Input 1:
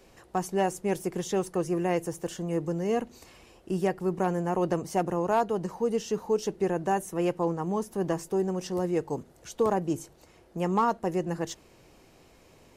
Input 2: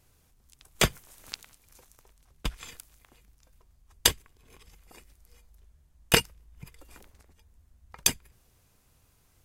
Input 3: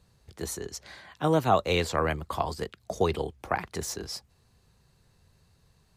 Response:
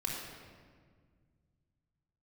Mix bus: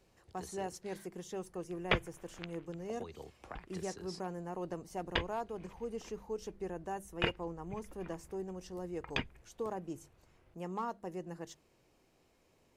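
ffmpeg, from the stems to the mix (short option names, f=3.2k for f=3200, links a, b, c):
-filter_complex "[0:a]bandreject=f=50:t=h:w=6,bandreject=f=100:t=h:w=6,bandreject=f=150:t=h:w=6,bandreject=f=200:t=h:w=6,volume=-13.5dB[a];[1:a]lowpass=f=2.8k:w=0.5412,lowpass=f=2.8k:w=1.3066,adelay=1100,volume=-1.5dB[b];[2:a]acompressor=threshold=-32dB:ratio=6,volume=-11.5dB,asplit=3[c][d][e];[c]atrim=end=1.06,asetpts=PTS-STARTPTS,afade=t=out:st=1.056:d=0.004:c=hsin[f];[d]atrim=start=1.06:end=2.69,asetpts=PTS-STARTPTS,volume=0[g];[e]atrim=start=2.69,asetpts=PTS-STARTPTS,afade=t=in:d=0.004:c=hsin[h];[f][g][h]concat=n=3:v=0:a=1,asplit=2[i][j];[j]apad=whole_len=464875[k];[b][k]sidechaincompress=threshold=-57dB:ratio=8:attack=36:release=1130[l];[l][i]amix=inputs=2:normalize=0,lowpass=f=10k:w=0.5412,lowpass=f=10k:w=1.3066,alimiter=limit=-15dB:level=0:latency=1:release=216,volume=0dB[m];[a][m]amix=inputs=2:normalize=0"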